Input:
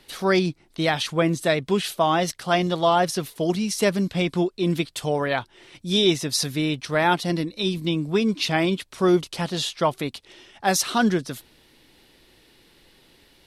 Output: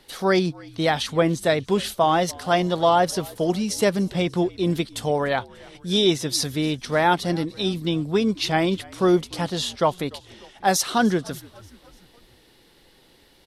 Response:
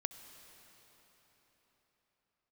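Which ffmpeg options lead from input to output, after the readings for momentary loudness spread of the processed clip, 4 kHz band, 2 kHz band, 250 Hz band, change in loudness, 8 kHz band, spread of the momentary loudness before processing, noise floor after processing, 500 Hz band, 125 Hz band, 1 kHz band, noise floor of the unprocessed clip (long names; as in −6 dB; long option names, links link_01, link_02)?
6 LU, −0.5 dB, −1.0 dB, 0.0 dB, +0.5 dB, 0.0 dB, 6 LU, −56 dBFS, +1.0 dB, 0.0 dB, +1.5 dB, −58 dBFS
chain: -filter_complex "[0:a]equalizer=frequency=500:width_type=o:width=0.33:gain=3,equalizer=frequency=800:width_type=o:width=0.33:gain=3,equalizer=frequency=2500:width_type=o:width=0.33:gain=-4,asplit=2[link_01][link_02];[link_02]asplit=4[link_03][link_04][link_05][link_06];[link_03]adelay=294,afreqshift=-61,volume=-23dB[link_07];[link_04]adelay=588,afreqshift=-122,volume=-28dB[link_08];[link_05]adelay=882,afreqshift=-183,volume=-33.1dB[link_09];[link_06]adelay=1176,afreqshift=-244,volume=-38.1dB[link_10];[link_07][link_08][link_09][link_10]amix=inputs=4:normalize=0[link_11];[link_01][link_11]amix=inputs=2:normalize=0"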